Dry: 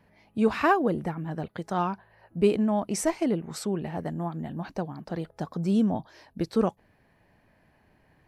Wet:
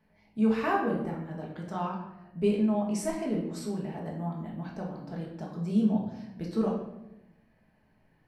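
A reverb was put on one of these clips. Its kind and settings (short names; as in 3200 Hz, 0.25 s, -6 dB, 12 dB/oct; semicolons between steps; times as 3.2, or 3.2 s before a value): shoebox room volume 290 m³, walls mixed, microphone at 1.5 m; gain -10 dB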